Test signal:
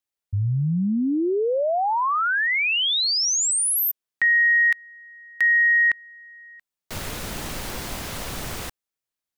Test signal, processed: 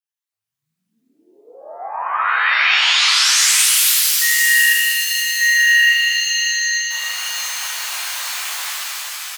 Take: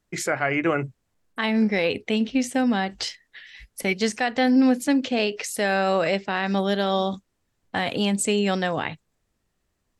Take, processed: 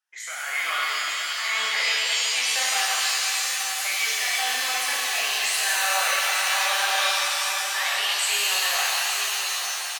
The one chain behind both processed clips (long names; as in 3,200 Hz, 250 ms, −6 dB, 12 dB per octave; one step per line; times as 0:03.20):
rippled gain that drifts along the octave scale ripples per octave 1.1, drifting +2.5 Hz, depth 8 dB
high-pass filter 930 Hz 24 dB per octave
brickwall limiter −20.5 dBFS
automatic gain control gain up to 8 dB
flanger 1.8 Hz, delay 2.1 ms, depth 9.8 ms, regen −65%
single-tap delay 882 ms −8.5 dB
reverb with rising layers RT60 3.5 s, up +7 semitones, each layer −2 dB, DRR −7 dB
level −5 dB